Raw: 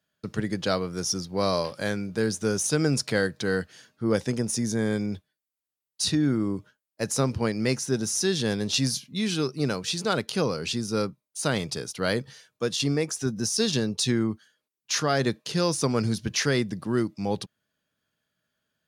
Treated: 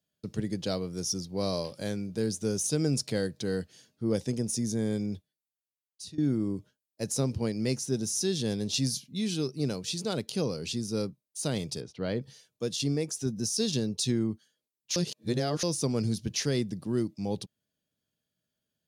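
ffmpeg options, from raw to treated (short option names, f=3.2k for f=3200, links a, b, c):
-filter_complex "[0:a]asplit=3[a][b][c];[a]afade=t=out:st=11.8:d=0.02[d];[b]lowpass=2.8k,afade=t=in:st=11.8:d=0.02,afade=t=out:st=12.21:d=0.02[e];[c]afade=t=in:st=12.21:d=0.02[f];[d][e][f]amix=inputs=3:normalize=0,asplit=4[g][h][i][j];[g]atrim=end=6.18,asetpts=PTS-STARTPTS,afade=t=out:st=5.12:d=1.06:silence=0.112202[k];[h]atrim=start=6.18:end=14.962,asetpts=PTS-STARTPTS,afade=t=in:d=0.004:c=hsin:silence=0.112202[l];[i]atrim=start=14.958:end=15.632,asetpts=PTS-STARTPTS,areverse[m];[j]atrim=start=15.628[n];[k][l]concat=n=2:v=0:a=1[o];[o][m]acrossfade=d=0.004:c1=hsin:c2=hsin[p];[p][n]acrossfade=d=0.004:c1=hsin:c2=hsin,equalizer=f=1.4k:w=0.8:g=-12,volume=-2.5dB"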